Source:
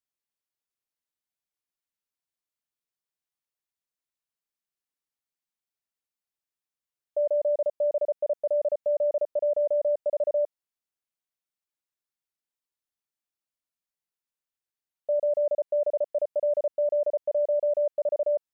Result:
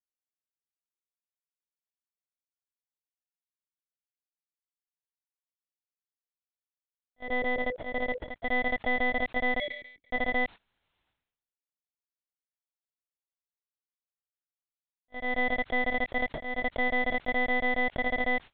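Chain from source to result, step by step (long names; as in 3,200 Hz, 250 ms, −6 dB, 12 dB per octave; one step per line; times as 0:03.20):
samples in bit-reversed order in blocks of 32 samples
0:07.27–0:08.31: parametric band 500 Hz +14.5 dB 0.26 octaves
volume swells 471 ms
brickwall limiter −24.5 dBFS, peak gain reduction 9.5 dB
0:09.59–0:10.13: formant filter i
noise gate −43 dBFS, range −21 dB
one-pitch LPC vocoder at 8 kHz 250 Hz
level that may fall only so fast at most 73 dB per second
level +4.5 dB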